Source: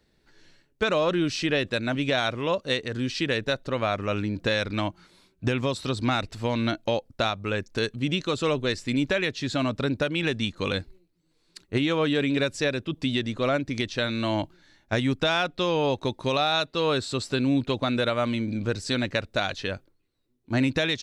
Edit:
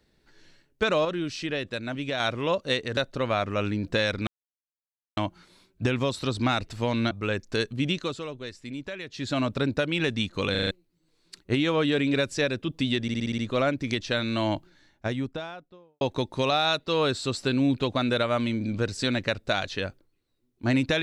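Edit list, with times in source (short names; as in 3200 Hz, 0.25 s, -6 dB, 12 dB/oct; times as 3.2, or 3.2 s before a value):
1.05–2.2 gain -5.5 dB
2.97–3.49 cut
4.79 insert silence 0.90 s
6.73–7.34 cut
8.02–9.73 dip -11.5 dB, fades 0.44 s equal-power
10.74 stutter in place 0.04 s, 5 plays
13.25 stutter 0.06 s, 7 plays
14.37–15.88 studio fade out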